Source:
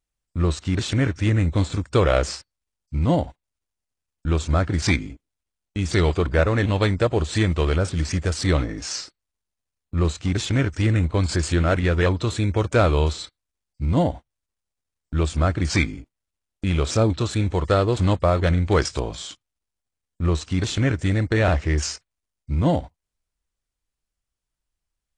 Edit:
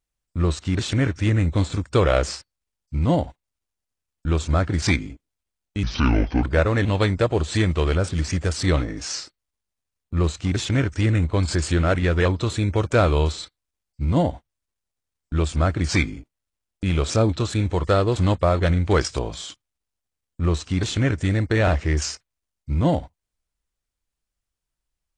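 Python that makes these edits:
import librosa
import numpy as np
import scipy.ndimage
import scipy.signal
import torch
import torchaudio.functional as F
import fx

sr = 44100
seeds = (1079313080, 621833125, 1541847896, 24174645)

y = fx.edit(x, sr, fx.speed_span(start_s=5.83, length_s=0.41, speed=0.68), tone=tone)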